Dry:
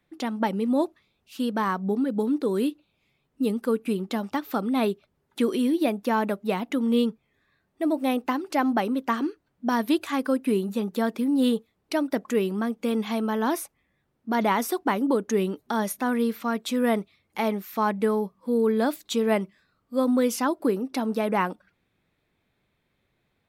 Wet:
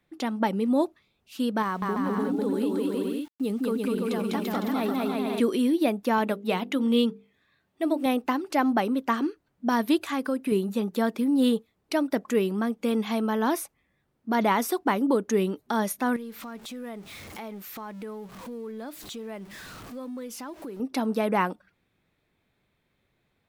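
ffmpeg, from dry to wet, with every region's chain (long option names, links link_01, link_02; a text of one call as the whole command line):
ffmpeg -i in.wav -filter_complex "[0:a]asettb=1/sr,asplit=3[link_01][link_02][link_03];[link_01]atrim=end=1.624[link_04];[link_02]atrim=start=1.62:end=5.4,asetpts=PTS-STARTPTS,afade=type=in:duration=0.004:curve=qsin,afade=type=out:start_time=3.776:duration=0.004:curve=qsin,aecho=1:1:200|340|438|506.6|554.6:0.794|0.631|0.501|0.398|0.316,atrim=end_sample=166698,acompressor=threshold=-25dB:ratio=2.5:attack=3.2:release=140:knee=1:detection=peak,aeval=exprs='val(0)*gte(abs(val(0)),0.00422)':channel_layout=same[link_05];[link_03]atrim=start=5.396[link_06];[link_04][link_05]acrossfade=duration=0.004:curve1=hsin:curve2=qsin[link_07];[link_07][link_06]acrossfade=duration=0.004:curve1=qsin:curve2=hsin,asettb=1/sr,asplit=3[link_08][link_09][link_10];[link_08]atrim=end=6.184[link_11];[link_09]atrim=start=6.18:end=8.06,asetpts=PTS-STARTPTS,afade=type=in:duration=0.004:curve=qsin,afade=type=out:start_time=1.876:duration=0.004:curve=qsin,highpass=59,equalizer=frequency=3200:width_type=o:width=0.78:gain=5,bandreject=frequency=50:width_type=h:width=6,bandreject=frequency=100:width_type=h:width=6,bandreject=frequency=150:width_type=h:width=6,bandreject=frequency=200:width_type=h:width=6,bandreject=frequency=250:width_type=h:width=6,bandreject=frequency=300:width_type=h:width=6,bandreject=frequency=350:width_type=h:width=6,bandreject=frequency=400:width_type=h:width=6,bandreject=frequency=450:width_type=h:width=6,bandreject=frequency=500:width_type=h:width=6[link_12];[link_10]atrim=start=8.056[link_13];[link_11][link_12]acrossfade=duration=0.004:curve1=hsin:curve2=qsin[link_14];[link_14][link_13]acrossfade=duration=0.004:curve1=qsin:curve2=hsin,asettb=1/sr,asplit=3[link_15][link_16][link_17];[link_15]atrim=end=10.054[link_18];[link_16]atrim=start=10.05:end=10.52,asetpts=PTS-STARTPTS,afade=type=in:duration=0.004:curve=qsin,afade=type=out:start_time=0.466:duration=0.004:curve=qsin,highpass=57,acompressor=threshold=-25dB:ratio=2:attack=3.2:release=140:knee=1:detection=peak[link_19];[link_17]atrim=start=10.516[link_20];[link_18][link_19]acrossfade=duration=0.004:curve1=hsin:curve2=qsin[link_21];[link_21][link_20]acrossfade=duration=0.004:curve1=qsin:curve2=hsin,asettb=1/sr,asplit=3[link_22][link_23][link_24];[link_22]atrim=end=16.164[link_25];[link_23]atrim=start=16.16:end=20.8,asetpts=PTS-STARTPTS,afade=type=in:duration=0.004:curve=qsin,afade=type=out:start_time=4.636:duration=0.004:curve=qsin,aeval=exprs='val(0)+0.5*0.0133*sgn(val(0))':channel_layout=same,acompressor=threshold=-40dB:ratio=3:attack=3.2:release=140:knee=1:detection=peak[link_26];[link_24]atrim=start=20.796[link_27];[link_25][link_26]acrossfade=duration=0.004:curve1=hsin:curve2=qsin[link_28];[link_28][link_27]acrossfade=duration=0.004:curve1=qsin:curve2=hsin" out.wav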